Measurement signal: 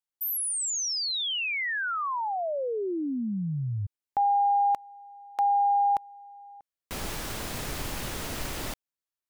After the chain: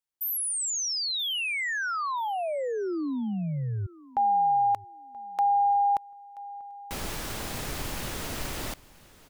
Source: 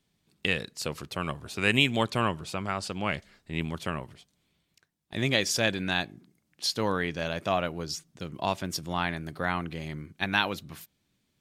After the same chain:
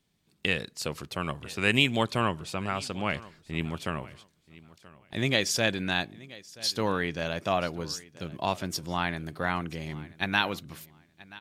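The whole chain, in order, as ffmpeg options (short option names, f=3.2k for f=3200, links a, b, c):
-af "aecho=1:1:980|1960:0.0944|0.0198"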